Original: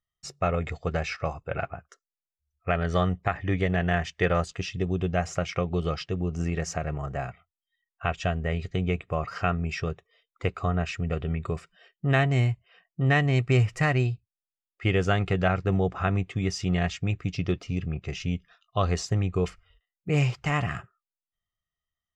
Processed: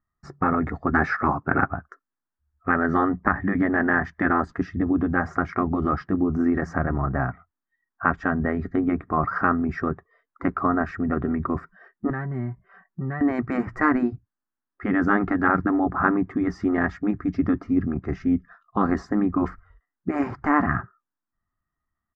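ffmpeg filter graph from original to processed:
-filter_complex "[0:a]asettb=1/sr,asplit=3[s0][s1][s2];[s0]atrim=end=0.934[s3];[s1]atrim=start=0.93:end=1.64,asetpts=PTS-STARTPTS,afade=t=in:d=0.004:c=qsin,afade=t=out:st=0.706:d=0.004:c=qsin,highpass=150,acontrast=51[s4];[s2]atrim=start=1.636[s5];[s3][s4]acrossfade=d=0.004:c1=hsin:c2=qsin[s6];[s6][s5]acrossfade=d=0.004:c1=qsin:c2=hsin,asettb=1/sr,asplit=3[s7][s8][s9];[s7]atrim=end=12.104[s10];[s8]atrim=start=12.1:end=13.21,asetpts=PTS-STARTPTS,afade=t=in:d=0.004:c=qsin,afade=t=out:st=1.106:d=0.004:c=qsin,highshelf=f=5200:g=-5.5,aecho=1:1:5.2:0.75,atrim=end_sample=48951,acompressor=threshold=0.00891:ratio=3:attack=3.2:release=140:knee=1:detection=peak[s11];[s9]atrim=start=13.206[s12];[s10][s11]acrossfade=d=0.004:c1=hsin:c2=qsin[s13];[s13][s12]acrossfade=d=0.004:c1=qsin:c2=hsin,afftfilt=real='re*lt(hypot(re,im),0.251)':imag='im*lt(hypot(re,im),0.251)':win_size=1024:overlap=0.75,firequalizer=gain_entry='entry(160,0);entry(260,10);entry(470,-7);entry(940,3);entry(1700,2);entry(2700,-29);entry(4800,-22);entry(7500,-30)':delay=0.05:min_phase=1,volume=2.66"

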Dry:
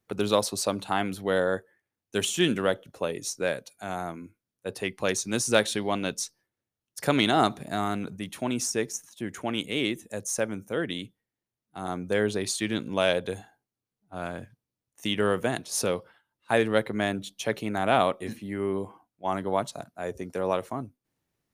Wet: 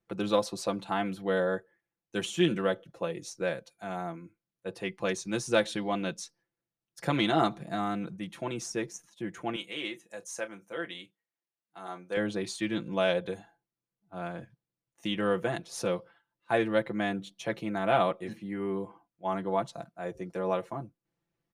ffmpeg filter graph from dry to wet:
-filter_complex "[0:a]asettb=1/sr,asplit=3[s0][s1][s2];[s0]atrim=end=9.564[s3];[s1]atrim=start=9.56:end=12.17,asetpts=PTS-STARTPTS,afade=t=in:d=0.004:c=qsin,afade=t=out:st=2.606:d=0.004:c=qsin,highpass=f=840:p=1,bandreject=f=3500:w=30,asplit=2[s4][s5];[s5]adelay=30,volume=0.224[s6];[s4][s6]amix=inputs=2:normalize=0,atrim=end_sample=115101[s7];[s2]atrim=start=12.166[s8];[s3][s7]acrossfade=d=0.004:c1=hsin:c2=qsin[s9];[s9][s8]acrossfade=d=0.004:c1=qsin:c2=hsin,aemphasis=mode=reproduction:type=50kf,aecho=1:1:5.9:0.72,volume=0.596"

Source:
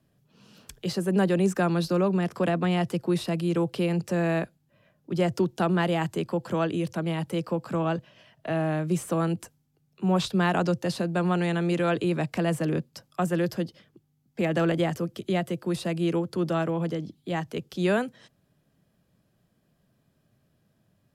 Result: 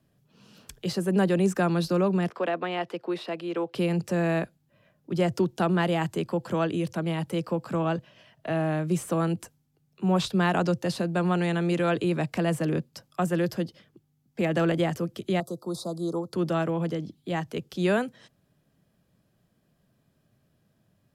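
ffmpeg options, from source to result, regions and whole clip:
-filter_complex "[0:a]asettb=1/sr,asplit=3[s0][s1][s2];[s0]atrim=end=2.304[s3];[s1]atrim=start=2.3:end=3.75,asetpts=PTS-STARTPTS,afade=t=in:d=0.004:c=qsin,afade=t=out:st=1.446:d=0.004:c=qsin,acrossover=split=300 4200:gain=0.0631 1 0.141[s4][s5][s6];[s4][s5][s6]amix=inputs=3:normalize=0,asoftclip=type=hard:threshold=0.119[s7];[s2]atrim=start=3.746[s8];[s3][s7]acrossfade=d=0.004:c1=hsin:c2=qsin[s9];[s9][s8]acrossfade=d=0.004:c1=qsin:c2=hsin,asettb=1/sr,asplit=3[s10][s11][s12];[s10]atrim=end=15.404[s13];[s11]atrim=start=15.4:end=16.33,asetpts=PTS-STARTPTS,afade=t=in:d=0.004:c=qsin,afade=t=out:st=0.926:d=0.004:c=qsin,asuperstop=centerf=2200:order=12:qfactor=0.91,lowshelf=f=280:g=-9[s14];[s12]atrim=start=16.326[s15];[s13][s14]acrossfade=d=0.004:c1=hsin:c2=qsin[s16];[s16][s15]acrossfade=d=0.004:c1=qsin:c2=hsin"

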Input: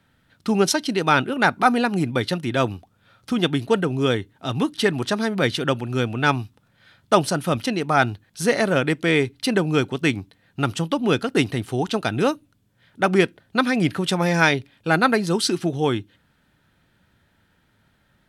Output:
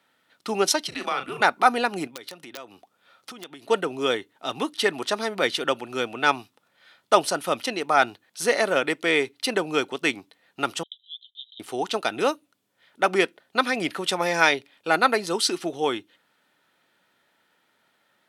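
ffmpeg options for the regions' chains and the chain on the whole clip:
-filter_complex "[0:a]asettb=1/sr,asplit=3[s0][s1][s2];[s0]atrim=end=0.884[s3];[s1]atrim=start=0.88:end=1.41,asetpts=PTS-STARTPTS,afade=t=in:d=0.004:c=qsin,afade=t=out:st=0.526:d=0.004:c=qsin,afreqshift=-120,acompressor=threshold=0.0794:ratio=4:attack=3.2:release=140:knee=1:detection=peak,asplit=2[s4][s5];[s5]adelay=38,volume=0.376[s6];[s4][s6]amix=inputs=2:normalize=0,atrim=end_sample=23373[s7];[s2]atrim=start=1.406[s8];[s3][s7]acrossfade=d=0.004:c1=hsin:c2=qsin[s9];[s9][s8]acrossfade=d=0.004:c1=qsin:c2=hsin,asettb=1/sr,asplit=3[s10][s11][s12];[s10]atrim=end=2.074[s13];[s11]atrim=start=2.07:end=3.7,asetpts=PTS-STARTPTS,afade=t=in:d=0.004:c=qsin,afade=t=out:st=1.626:d=0.004:c=qsin,highpass=94,acompressor=threshold=0.0251:ratio=10:attack=3.2:release=140:knee=1:detection=peak,aeval=exprs='(mod(15.8*val(0)+1,2)-1)/15.8':c=same[s14];[s12]atrim=start=3.696[s15];[s13][s14]acrossfade=d=0.004:c1=hsin:c2=qsin[s16];[s16][s15]acrossfade=d=0.004:c1=qsin:c2=hsin,asettb=1/sr,asplit=3[s17][s18][s19];[s17]atrim=end=10.834[s20];[s18]atrim=start=10.83:end=11.6,asetpts=PTS-STARTPTS,afade=t=in:d=0.004:c=qsin,afade=t=out:st=0.766:d=0.004:c=qsin,acompressor=threshold=0.0708:ratio=2:attack=3.2:release=140:knee=1:detection=peak,asuperpass=centerf=3500:order=12:qfactor=4.3[s21];[s19]atrim=start=11.596[s22];[s20][s21]acrossfade=d=0.004:c1=hsin:c2=qsin[s23];[s23][s22]acrossfade=d=0.004:c1=qsin:c2=hsin,highpass=420,bandreject=f=1600:w=15"

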